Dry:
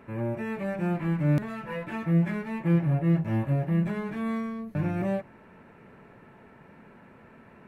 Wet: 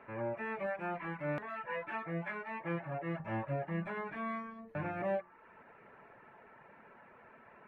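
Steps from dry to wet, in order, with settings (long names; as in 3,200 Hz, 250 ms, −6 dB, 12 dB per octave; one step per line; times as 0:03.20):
0:00.66–0:03.20: low-shelf EQ 300 Hz −6.5 dB
reverb reduction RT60 0.6 s
three-way crossover with the lows and the highs turned down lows −14 dB, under 490 Hz, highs −22 dB, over 2,700 Hz
hum removal 89.98 Hz, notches 21
level +1 dB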